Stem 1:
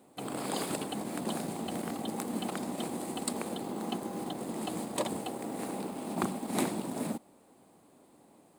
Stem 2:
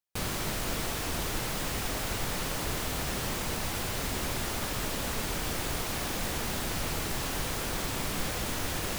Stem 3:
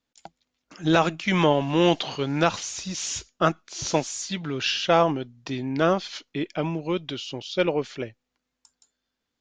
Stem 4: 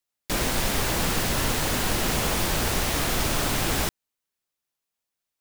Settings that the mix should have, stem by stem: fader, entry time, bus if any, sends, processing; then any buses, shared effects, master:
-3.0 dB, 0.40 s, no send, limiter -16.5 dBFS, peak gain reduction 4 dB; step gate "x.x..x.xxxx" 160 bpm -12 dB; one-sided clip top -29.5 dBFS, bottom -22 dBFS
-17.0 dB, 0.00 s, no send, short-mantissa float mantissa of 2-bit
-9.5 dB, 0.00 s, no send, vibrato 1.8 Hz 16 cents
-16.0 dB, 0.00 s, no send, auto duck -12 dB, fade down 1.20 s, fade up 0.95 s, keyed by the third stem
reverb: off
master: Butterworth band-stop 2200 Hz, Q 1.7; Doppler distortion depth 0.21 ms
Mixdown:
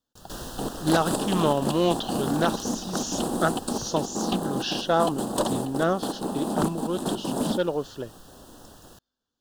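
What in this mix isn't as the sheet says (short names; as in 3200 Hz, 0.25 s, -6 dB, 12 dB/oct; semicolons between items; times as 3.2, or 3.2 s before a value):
stem 1 -3.0 dB -> +9.0 dB; stem 3 -9.5 dB -> -2.5 dB; stem 4 -16.0 dB -> -7.0 dB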